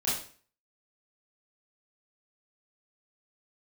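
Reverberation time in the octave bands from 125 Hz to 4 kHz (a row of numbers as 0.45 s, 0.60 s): 0.50 s, 0.45 s, 0.45 s, 0.45 s, 0.45 s, 0.40 s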